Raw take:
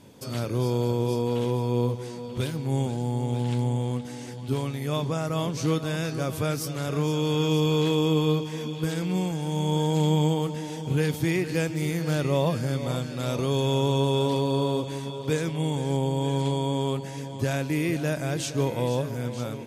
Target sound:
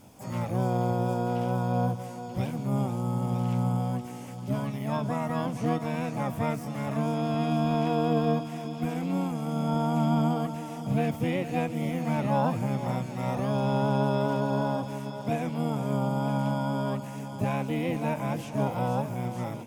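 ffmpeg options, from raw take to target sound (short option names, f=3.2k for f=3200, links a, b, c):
-filter_complex "[0:a]asplit=2[a][b];[b]asetrate=66075,aresample=44100,atempo=0.66742,volume=-2dB[c];[a][c]amix=inputs=2:normalize=0,acrossover=split=2900[d][e];[e]acompressor=threshold=-49dB:ratio=4:attack=1:release=60[f];[d][f]amix=inputs=2:normalize=0,equalizer=f=160:t=o:w=0.67:g=-4,equalizer=f=400:t=o:w=0.67:g=-11,equalizer=f=1.6k:t=o:w=0.67:g=-7,equalizer=f=4k:t=o:w=0.67:g=-9"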